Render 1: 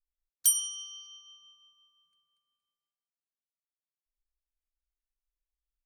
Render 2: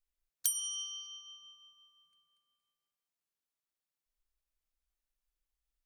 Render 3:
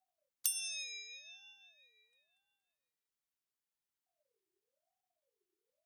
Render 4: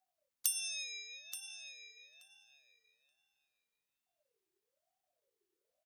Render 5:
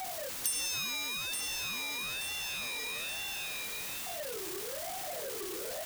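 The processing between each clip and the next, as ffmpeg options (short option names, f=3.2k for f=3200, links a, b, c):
-af "acompressor=threshold=-31dB:ratio=8,volume=2dB"
-af "aeval=exprs='val(0)*sin(2*PI*560*n/s+560*0.35/1*sin(2*PI*1*n/s))':c=same"
-filter_complex "[0:a]asplit=2[a][b];[b]adelay=878,lowpass=f=4.7k:p=1,volume=-7dB,asplit=2[c][d];[d]adelay=878,lowpass=f=4.7k:p=1,volume=0.16,asplit=2[e][f];[f]adelay=878,lowpass=f=4.7k:p=1,volume=0.16[g];[a][c][e][g]amix=inputs=4:normalize=0,volume=1dB"
-af "aeval=exprs='val(0)+0.5*0.0376*sgn(val(0))':c=same,volume=-3dB"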